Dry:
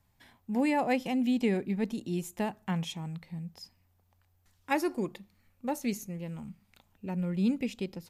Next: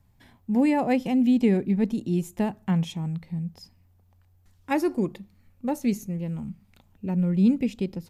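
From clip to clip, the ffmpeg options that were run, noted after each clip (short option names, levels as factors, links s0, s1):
-af "lowshelf=f=440:g=10"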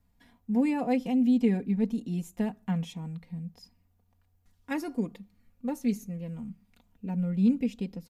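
-af "aecho=1:1:4.2:0.63,volume=0.447"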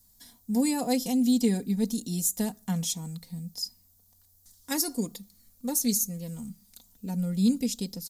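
-af "aexciter=amount=13.3:drive=3.7:freq=3900"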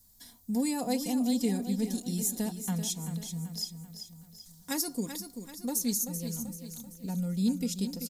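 -filter_complex "[0:a]asplit=2[s0][s1];[s1]acompressor=threshold=0.02:ratio=6,volume=1.12[s2];[s0][s2]amix=inputs=2:normalize=0,aecho=1:1:386|772|1158|1544|1930:0.355|0.167|0.0784|0.0368|0.0173,volume=0.473"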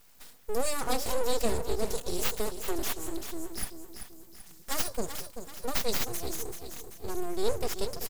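-af "aeval=exprs='abs(val(0))':c=same,volume=1.58"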